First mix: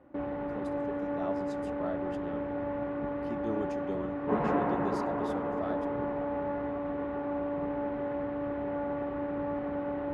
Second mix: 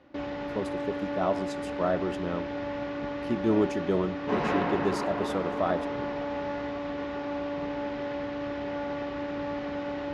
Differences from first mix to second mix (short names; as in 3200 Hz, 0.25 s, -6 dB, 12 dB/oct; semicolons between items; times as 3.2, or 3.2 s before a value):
speech +11.0 dB; background: remove LPF 1300 Hz 12 dB/oct